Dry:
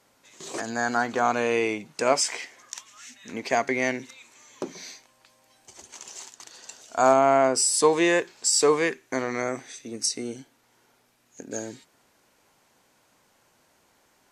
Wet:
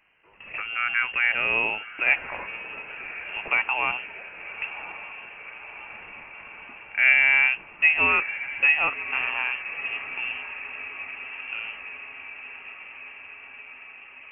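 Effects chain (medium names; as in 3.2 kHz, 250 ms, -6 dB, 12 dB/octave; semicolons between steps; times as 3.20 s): echo that smears into a reverb 1114 ms, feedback 69%, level -13 dB; frequency inversion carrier 3 kHz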